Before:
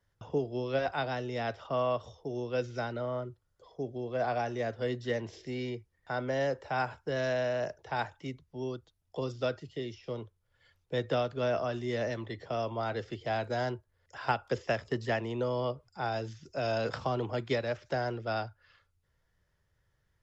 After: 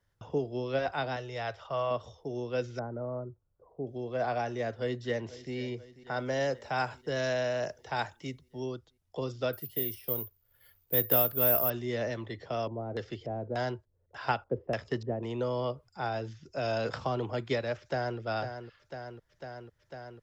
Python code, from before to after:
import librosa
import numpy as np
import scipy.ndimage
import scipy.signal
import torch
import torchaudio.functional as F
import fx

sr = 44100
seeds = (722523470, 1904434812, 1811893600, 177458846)

y = fx.peak_eq(x, sr, hz=260.0, db=-13.0, octaves=0.91, at=(1.16, 1.91))
y = fx.gaussian_blur(y, sr, sigma=7.8, at=(2.79, 3.87))
y = fx.echo_throw(y, sr, start_s=4.73, length_s=0.81, ms=490, feedback_pct=65, wet_db=-17.0)
y = fx.high_shelf(y, sr, hz=5000.0, db=10.0, at=(6.16, 8.66))
y = fx.resample_bad(y, sr, factor=3, down='none', up='zero_stuff', at=(9.53, 11.7))
y = fx.filter_lfo_lowpass(y, sr, shape='square', hz=1.7, low_hz=480.0, high_hz=6300.0, q=0.98, at=(12.38, 15.23))
y = fx.high_shelf(y, sr, hz=6700.0, db=-11.5, at=(16.08, 16.52))
y = fx.echo_throw(y, sr, start_s=17.79, length_s=0.4, ms=500, feedback_pct=85, wet_db=-8.5)